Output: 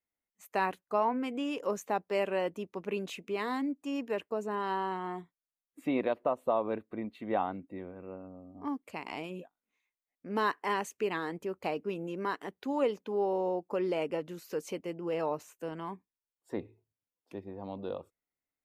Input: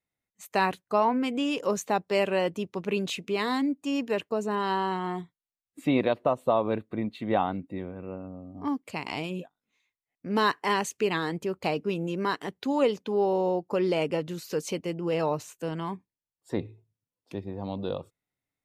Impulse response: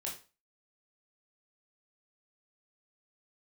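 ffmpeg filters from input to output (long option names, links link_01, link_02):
-af "equalizer=frequency=125:width_type=o:width=1:gain=-11,equalizer=frequency=4000:width_type=o:width=1:gain=-7,equalizer=frequency=8000:width_type=o:width=1:gain=-4,volume=-4.5dB"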